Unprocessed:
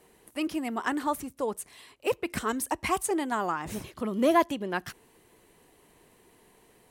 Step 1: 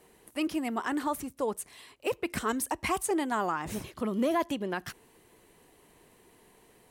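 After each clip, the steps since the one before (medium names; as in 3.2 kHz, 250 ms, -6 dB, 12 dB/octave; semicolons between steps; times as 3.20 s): peak limiter -20 dBFS, peak gain reduction 7.5 dB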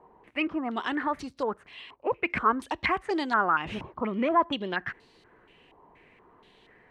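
step-sequenced low-pass 4.2 Hz 970–4400 Hz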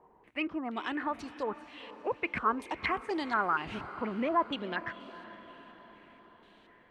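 echo that smears into a reverb 462 ms, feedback 56%, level -15 dB; trim -5 dB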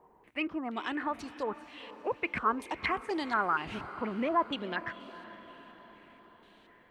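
treble shelf 8.9 kHz +7 dB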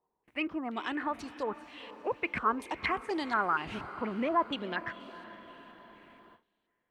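gate with hold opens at -47 dBFS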